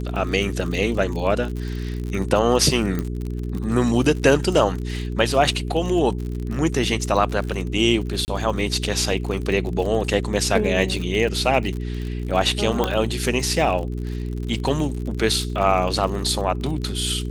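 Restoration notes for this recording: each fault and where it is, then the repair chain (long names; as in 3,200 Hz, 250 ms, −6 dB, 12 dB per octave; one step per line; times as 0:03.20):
surface crackle 54 per second −28 dBFS
mains hum 60 Hz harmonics 7 −27 dBFS
0:02.99: click −13 dBFS
0:08.25–0:08.28: drop-out 29 ms
0:12.84: click −7 dBFS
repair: click removal
hum removal 60 Hz, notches 7
repair the gap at 0:08.25, 29 ms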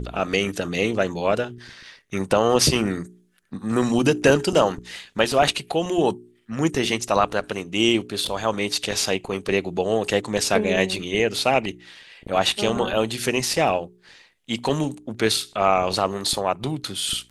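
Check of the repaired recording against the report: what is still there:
none of them is left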